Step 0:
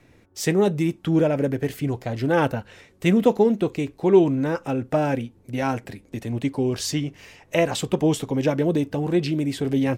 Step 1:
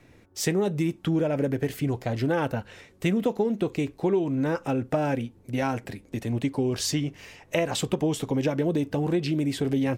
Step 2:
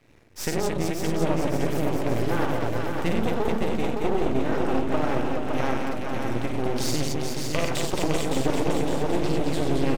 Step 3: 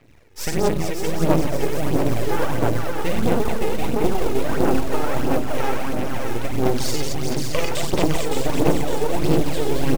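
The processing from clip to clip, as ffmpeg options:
-af "acompressor=threshold=-21dB:ratio=6"
-filter_complex "[0:a]asplit=2[a][b];[b]aecho=0:1:53|97|222|430|640:0.562|0.562|0.631|0.531|0.126[c];[a][c]amix=inputs=2:normalize=0,aeval=exprs='max(val(0),0)':c=same,asplit=2[d][e];[e]aecho=0:1:562|1124|1686|2248|2810|3372|3934:0.562|0.292|0.152|0.0791|0.0411|0.0214|0.0111[f];[d][f]amix=inputs=2:normalize=0"
-af "aphaser=in_gain=1:out_gain=1:delay=2.4:decay=0.54:speed=1.5:type=sinusoidal,acrusher=bits=6:mode=log:mix=0:aa=0.000001,volume=1dB"

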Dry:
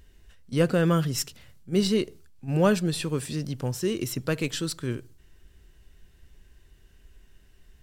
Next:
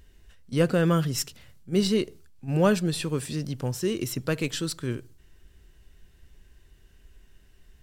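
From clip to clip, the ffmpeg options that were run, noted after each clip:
-af anull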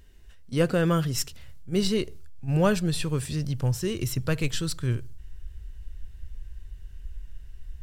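-af "asubboost=boost=7:cutoff=100"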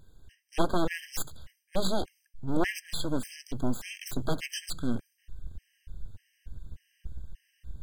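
-af "aeval=exprs='abs(val(0))':c=same,afftfilt=real='re*gt(sin(2*PI*1.7*pts/sr)*(1-2*mod(floor(b*sr/1024/1600),2)),0)':imag='im*gt(sin(2*PI*1.7*pts/sr)*(1-2*mod(floor(b*sr/1024/1600),2)),0)':win_size=1024:overlap=0.75"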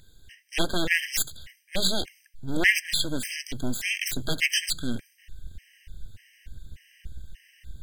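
-af "highshelf=f=1.5k:t=q:w=3:g=9.5"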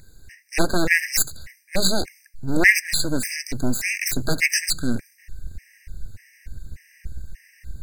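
-af "asuperstop=centerf=3200:order=4:qfactor=1.9,volume=6.5dB"

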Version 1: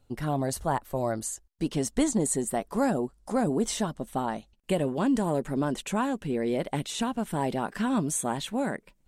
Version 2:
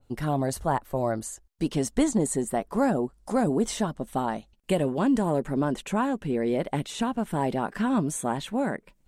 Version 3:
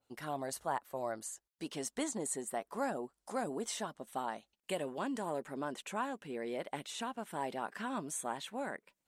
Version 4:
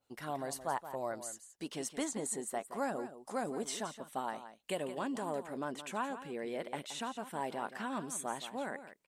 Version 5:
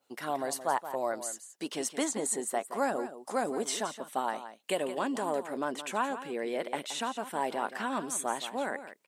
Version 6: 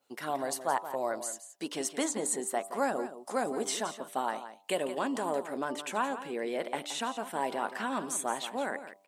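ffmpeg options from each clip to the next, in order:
-af "adynamicequalizer=threshold=0.00447:dfrequency=2600:dqfactor=0.7:tfrequency=2600:tqfactor=0.7:attack=5:release=100:ratio=0.375:range=3:mode=cutabove:tftype=highshelf,volume=2dB"
-af "highpass=f=780:p=1,volume=-6.5dB"
-af "aecho=1:1:172:0.251"
-af "highpass=240,volume=6.5dB"
-af "bandreject=f=98.13:t=h:w=4,bandreject=f=196.26:t=h:w=4,bandreject=f=294.39:t=h:w=4,bandreject=f=392.52:t=h:w=4,bandreject=f=490.65:t=h:w=4,bandreject=f=588.78:t=h:w=4,bandreject=f=686.91:t=h:w=4,bandreject=f=785.04:t=h:w=4,bandreject=f=883.17:t=h:w=4,bandreject=f=981.3:t=h:w=4,bandreject=f=1.07943k:t=h:w=4,bandreject=f=1.17756k:t=h:w=4,bandreject=f=1.27569k:t=h:w=4"

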